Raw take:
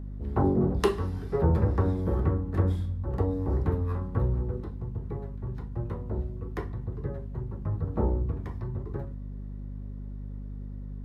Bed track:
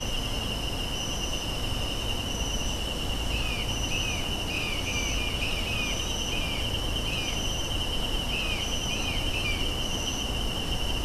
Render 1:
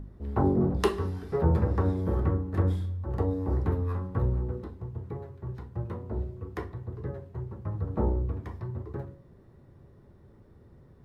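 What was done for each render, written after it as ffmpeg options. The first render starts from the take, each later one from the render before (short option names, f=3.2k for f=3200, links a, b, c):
-af "bandreject=f=50:t=h:w=4,bandreject=f=100:t=h:w=4,bandreject=f=150:t=h:w=4,bandreject=f=200:t=h:w=4,bandreject=f=250:t=h:w=4,bandreject=f=300:t=h:w=4,bandreject=f=350:t=h:w=4,bandreject=f=400:t=h:w=4,bandreject=f=450:t=h:w=4,bandreject=f=500:t=h:w=4,bandreject=f=550:t=h:w=4"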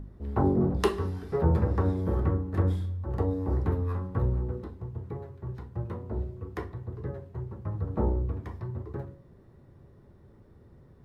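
-af anull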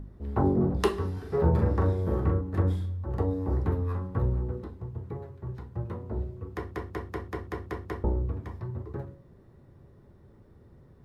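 -filter_complex "[0:a]asettb=1/sr,asplit=3[a][b][c];[a]atrim=end=1.134[d];[b]atrim=start=1.13:end=2.41,asetpts=PTS-STARTPTS,afade=t=in:d=0.004:c=qsin,afade=t=out:st=1.276:d=0.004:c=qsin,asplit=2[e][f];[f]adelay=41,volume=-5.5dB[g];[e][g]amix=inputs=2:normalize=0,atrim=end_sample=56448[h];[c]atrim=start=2.406[i];[d][h]acrossfade=d=0.004:c1=hsin:c2=qsin[j];[j][i]acrossfade=d=0.004:c1=qsin:c2=hsin,asplit=9[k][l][m][n][o][p][q][r][s];[k]atrim=end=6.712[t];[l]atrim=start=6.518:end=6.712[u];[m]atrim=start=6.518:end=6.712[v];[n]atrim=start=6.518:end=6.712[w];[o]atrim=start=6.518:end=6.712[x];[p]atrim=start=6.518:end=6.712[y];[q]atrim=start=6.518:end=6.712[z];[r]atrim=start=6.518:end=6.712[aa];[s]atrim=start=8.038[ab];[t][u]acrossfade=d=0.004:c1=hsin:c2=hsin[ac];[ac][v]acrossfade=d=0.004:c1=hsin:c2=hsin[ad];[ad][w]acrossfade=d=0.004:c1=hsin:c2=hsin[ae];[ae][x]acrossfade=d=0.004:c1=hsin:c2=hsin[af];[af][y]acrossfade=d=0.004:c1=hsin:c2=hsin[ag];[ag][z]acrossfade=d=0.004:c1=hsin:c2=hsin[ah];[ah][aa]acrossfade=d=0.004:c1=hsin:c2=hsin[ai];[ai][ab]acrossfade=d=0.004:c1=hsin:c2=hsin"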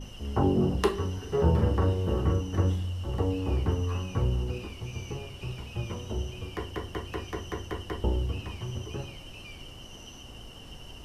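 -filter_complex "[1:a]volume=-16.5dB[a];[0:a][a]amix=inputs=2:normalize=0"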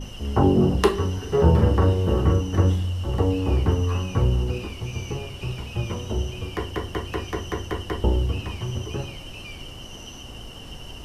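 -af "volume=6.5dB"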